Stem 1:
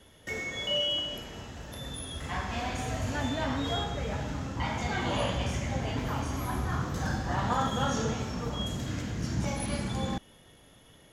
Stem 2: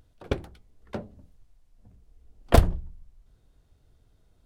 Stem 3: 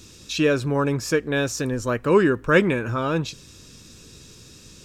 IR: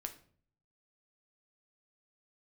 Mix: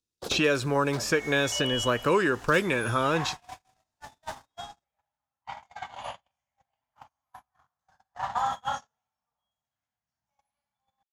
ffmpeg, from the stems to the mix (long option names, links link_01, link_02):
-filter_complex "[0:a]lowshelf=frequency=550:width_type=q:width=3:gain=-12,adelay=850,volume=-3dB,asplit=2[link_01][link_02];[link_02]volume=-19dB[link_03];[1:a]acompressor=threshold=-27dB:ratio=6,aexciter=amount=13.8:drive=7.9:freq=3700,asplit=2[link_04][link_05];[link_05]highpass=frequency=720:poles=1,volume=28dB,asoftclip=type=tanh:threshold=-13.5dB[link_06];[link_04][link_06]amix=inputs=2:normalize=0,lowpass=frequency=1400:poles=1,volume=-6dB,volume=-0.5dB,asplit=2[link_07][link_08];[link_08]volume=-16.5dB[link_09];[2:a]volume=2.5dB,asplit=3[link_10][link_11][link_12];[link_11]volume=-17.5dB[link_13];[link_12]apad=whole_len=196670[link_14];[link_07][link_14]sidechaincompress=threshold=-31dB:ratio=8:attack=16:release=251[link_15];[3:a]atrim=start_sample=2205[link_16];[link_03][link_09][link_13]amix=inputs=3:normalize=0[link_17];[link_17][link_16]afir=irnorm=-1:irlink=0[link_18];[link_01][link_15][link_10][link_18]amix=inputs=4:normalize=0,agate=range=-49dB:threshold=-29dB:ratio=16:detection=peak,acrossover=split=520|4000[link_19][link_20][link_21];[link_19]acompressor=threshold=-30dB:ratio=4[link_22];[link_20]acompressor=threshold=-23dB:ratio=4[link_23];[link_21]acompressor=threshold=-34dB:ratio=4[link_24];[link_22][link_23][link_24]amix=inputs=3:normalize=0"